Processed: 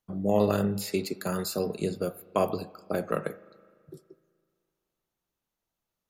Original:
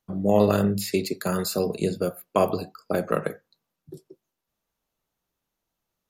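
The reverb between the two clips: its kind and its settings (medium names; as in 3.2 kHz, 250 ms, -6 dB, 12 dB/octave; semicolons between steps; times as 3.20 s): spring tank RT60 2.1 s, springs 36/42 ms, chirp 70 ms, DRR 19.5 dB; trim -4.5 dB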